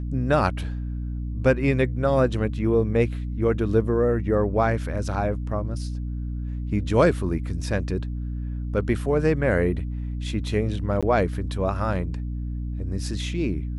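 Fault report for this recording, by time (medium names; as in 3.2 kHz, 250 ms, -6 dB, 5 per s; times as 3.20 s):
hum 60 Hz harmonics 5 -29 dBFS
11.01–11.03 s: dropout 16 ms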